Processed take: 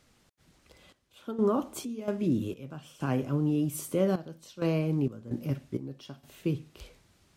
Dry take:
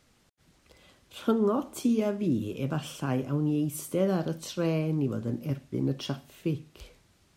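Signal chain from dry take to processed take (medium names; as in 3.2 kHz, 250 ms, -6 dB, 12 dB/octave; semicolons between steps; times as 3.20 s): trance gate "xxxx..xx.xx..x" 65 bpm -12 dB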